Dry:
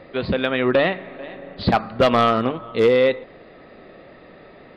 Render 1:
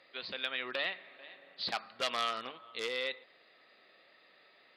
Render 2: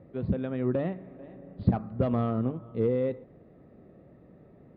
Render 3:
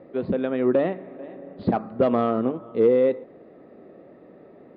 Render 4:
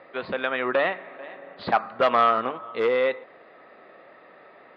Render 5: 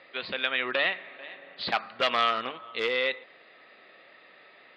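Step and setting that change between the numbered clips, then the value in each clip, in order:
resonant band-pass, frequency: 7,600, 110, 310, 1,200, 2,900 Hertz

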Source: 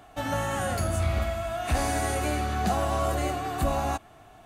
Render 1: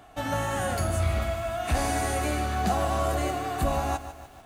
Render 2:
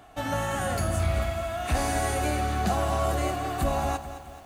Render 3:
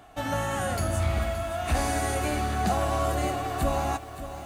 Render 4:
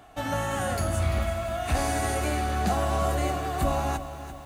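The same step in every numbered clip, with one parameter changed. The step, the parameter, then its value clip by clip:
feedback echo at a low word length, delay time: 148, 217, 571, 341 milliseconds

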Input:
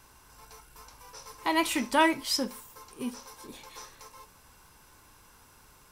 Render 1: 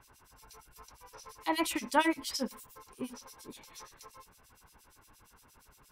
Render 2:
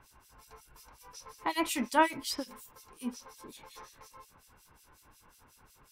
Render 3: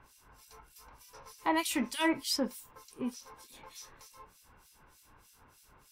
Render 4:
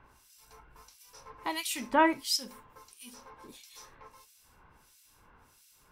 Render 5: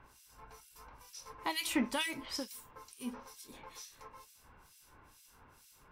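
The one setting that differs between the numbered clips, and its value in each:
two-band tremolo in antiphase, speed: 8.6, 5.5, 3.3, 1.5, 2.2 Hertz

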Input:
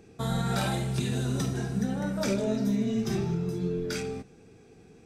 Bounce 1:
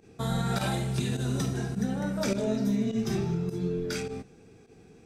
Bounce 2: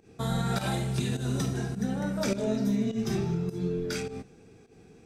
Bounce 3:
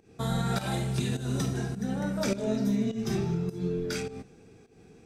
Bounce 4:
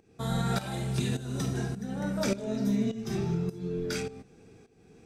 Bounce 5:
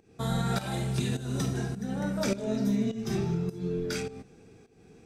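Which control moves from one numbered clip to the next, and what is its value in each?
fake sidechain pumping, release: 64, 130, 214, 519, 346 milliseconds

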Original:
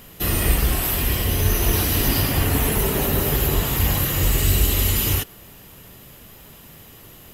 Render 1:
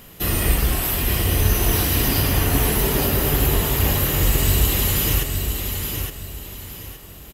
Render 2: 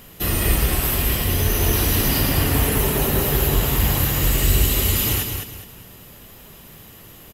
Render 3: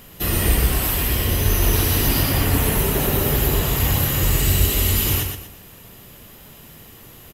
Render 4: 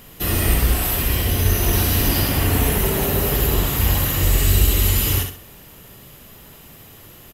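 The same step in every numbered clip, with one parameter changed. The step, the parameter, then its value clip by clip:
repeating echo, delay time: 867, 207, 120, 66 milliseconds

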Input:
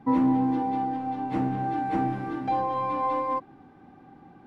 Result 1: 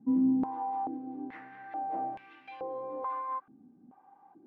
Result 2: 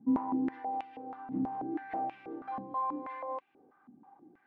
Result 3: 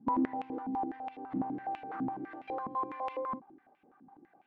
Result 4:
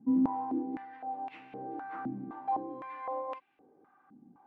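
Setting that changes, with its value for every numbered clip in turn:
band-pass on a step sequencer, speed: 2.3, 6.2, 12, 3.9 Hertz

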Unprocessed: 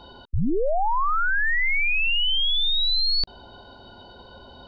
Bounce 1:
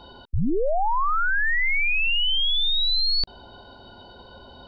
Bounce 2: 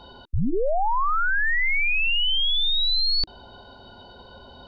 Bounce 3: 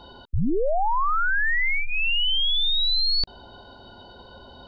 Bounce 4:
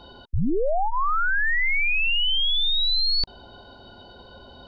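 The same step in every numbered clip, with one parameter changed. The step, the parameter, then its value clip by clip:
notch filter, centre frequency: 6,400, 320, 2,400, 930 Hertz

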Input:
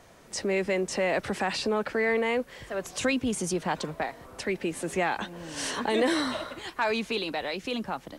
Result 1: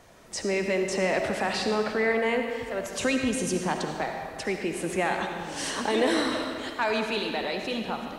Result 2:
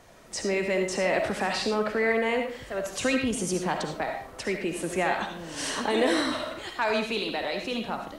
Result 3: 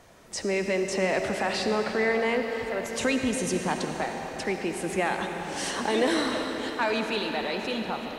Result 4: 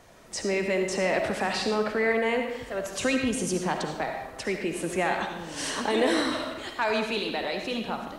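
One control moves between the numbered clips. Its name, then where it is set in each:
comb and all-pass reverb, RT60: 1.9, 0.43, 5.1, 0.9 seconds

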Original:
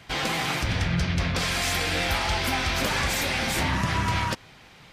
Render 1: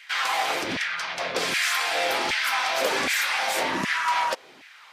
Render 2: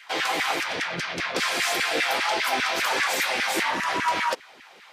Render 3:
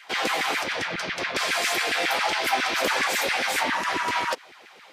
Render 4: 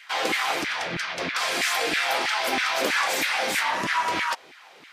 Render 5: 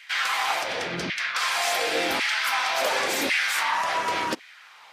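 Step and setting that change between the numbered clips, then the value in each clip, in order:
auto-filter high-pass, speed: 1.3, 5, 7.3, 3.1, 0.91 Hertz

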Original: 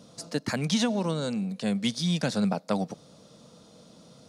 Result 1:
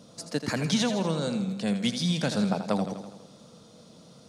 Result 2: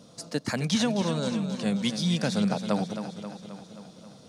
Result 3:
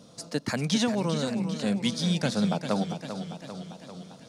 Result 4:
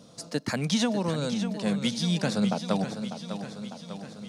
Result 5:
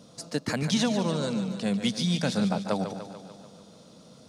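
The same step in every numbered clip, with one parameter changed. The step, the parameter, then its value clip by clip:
feedback echo with a swinging delay time, delay time: 82, 266, 396, 599, 146 milliseconds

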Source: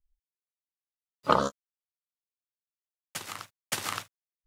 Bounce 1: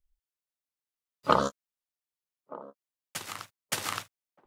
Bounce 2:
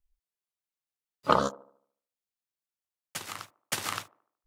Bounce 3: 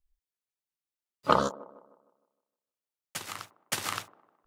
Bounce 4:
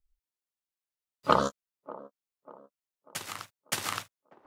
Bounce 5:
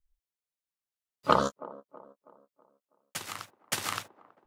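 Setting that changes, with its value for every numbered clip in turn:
delay with a band-pass on its return, delay time: 1,225, 74, 154, 592, 324 milliseconds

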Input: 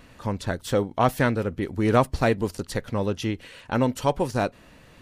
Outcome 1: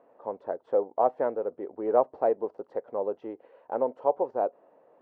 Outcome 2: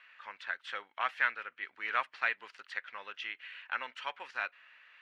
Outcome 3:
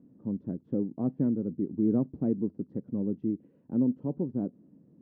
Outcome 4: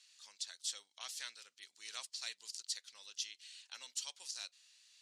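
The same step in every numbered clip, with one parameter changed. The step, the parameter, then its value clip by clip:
flat-topped band-pass, frequency: 600, 2,000, 230, 5,800 Hertz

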